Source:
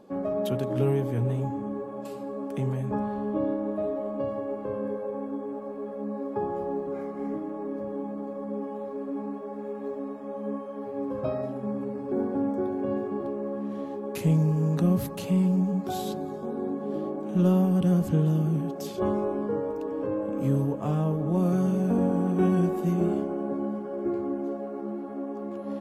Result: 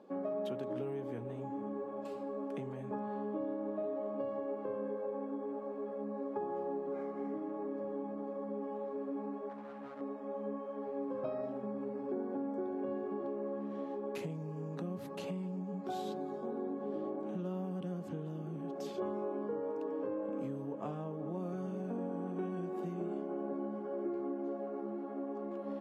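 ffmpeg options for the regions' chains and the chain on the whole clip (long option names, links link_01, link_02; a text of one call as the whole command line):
ffmpeg -i in.wav -filter_complex "[0:a]asettb=1/sr,asplit=3[link_01][link_02][link_03];[link_01]atrim=end=9.494[link_04];[link_02]atrim=start=9.49:end=10.01,asetpts=PTS-STARTPTS,afade=type=in:duration=0.004:curve=qsin,afade=type=out:start_time=0.516:duration=0.004:curve=qsin,asoftclip=type=hard:threshold=-32.5dB,equalizer=frequency=400:width_type=o:width=0.48:gain=-13.5[link_05];[link_03]atrim=start=10.006[link_06];[link_04][link_05]acrossfade=duration=0.004:curve1=hsin:curve2=qsin[link_07];[link_07][link_06]acrossfade=duration=0.004:curve1=qsin:curve2=hsin,acompressor=threshold=-29dB:ratio=5,highpass=230,aemphasis=mode=reproduction:type=50fm,volume=-4.5dB" out.wav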